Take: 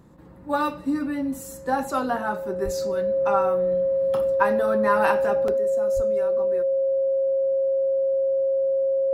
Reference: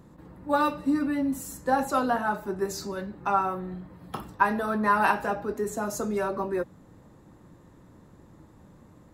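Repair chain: band-stop 540 Hz, Q 30; de-plosive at 2.64/5.95 s; interpolate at 5.48 s, 3.1 ms; trim 0 dB, from 5.57 s +9 dB

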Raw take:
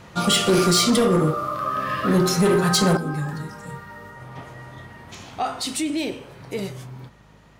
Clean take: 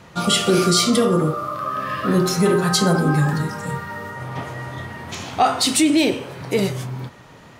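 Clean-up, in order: clip repair -13 dBFS; de-hum 52 Hz, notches 4; trim 0 dB, from 2.97 s +9 dB

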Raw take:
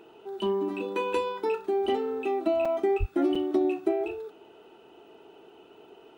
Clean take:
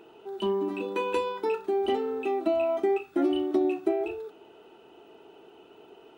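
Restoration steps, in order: de-plosive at 2.99 s; interpolate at 2.65/3.35 s, 4.9 ms

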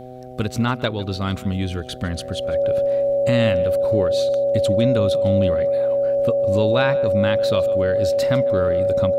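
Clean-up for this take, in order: de-hum 126.7 Hz, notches 6; band-stop 560 Hz, Q 30; inverse comb 152 ms -19.5 dB

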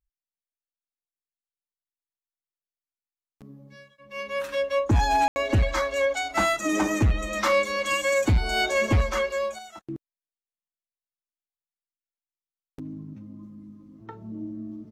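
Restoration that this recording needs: room tone fill 5.28–5.36 s

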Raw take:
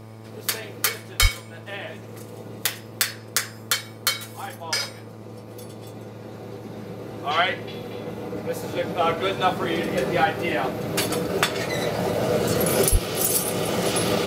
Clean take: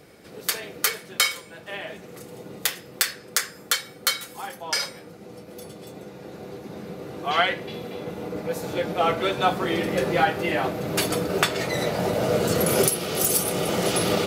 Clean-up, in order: de-hum 110.5 Hz, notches 11; 1.21–1.33 s: high-pass 140 Hz 24 dB/octave; 12.91–13.03 s: high-pass 140 Hz 24 dB/octave

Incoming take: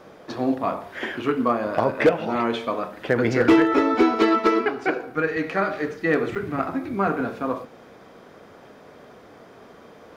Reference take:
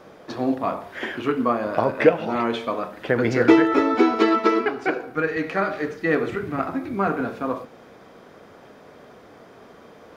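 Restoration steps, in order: clip repair -9.5 dBFS; interpolate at 6.35 s, 7.3 ms

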